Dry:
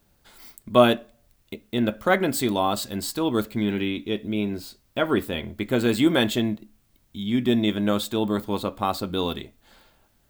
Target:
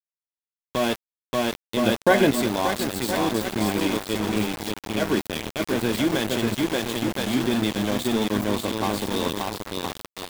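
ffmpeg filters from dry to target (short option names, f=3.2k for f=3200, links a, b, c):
-filter_complex "[0:a]acrossover=split=120|3700[a][b][c];[c]asoftclip=type=tanh:threshold=-28.5dB[d];[a][b][d]amix=inputs=3:normalize=0,asuperstop=centerf=1300:order=8:qfactor=5.7,bandreject=f=60:t=h:w=6,bandreject=f=120:t=h:w=6,bandreject=f=180:t=h:w=6,asplit=2[e][f];[f]aecho=0:1:580|1015|1341|1586|1769:0.631|0.398|0.251|0.158|0.1[g];[e][g]amix=inputs=2:normalize=0,alimiter=limit=-12.5dB:level=0:latency=1:release=75,asplit=3[h][i][j];[h]afade=t=out:st=1.85:d=0.02[k];[i]acontrast=70,afade=t=in:st=1.85:d=0.02,afade=t=out:st=2.3:d=0.02[l];[j]afade=t=in:st=2.3:d=0.02[m];[k][l][m]amix=inputs=3:normalize=0,aeval=exprs='val(0)*gte(abs(val(0)),0.0596)':c=same"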